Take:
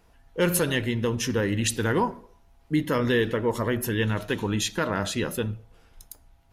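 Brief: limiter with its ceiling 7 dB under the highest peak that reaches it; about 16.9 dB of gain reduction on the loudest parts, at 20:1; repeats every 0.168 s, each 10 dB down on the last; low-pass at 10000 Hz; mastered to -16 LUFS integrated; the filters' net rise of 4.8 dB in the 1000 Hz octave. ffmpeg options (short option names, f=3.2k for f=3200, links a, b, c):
-af "lowpass=10k,equalizer=f=1k:t=o:g=5.5,acompressor=threshold=-33dB:ratio=20,alimiter=level_in=5dB:limit=-24dB:level=0:latency=1,volume=-5dB,aecho=1:1:168|336|504|672:0.316|0.101|0.0324|0.0104,volume=23.5dB"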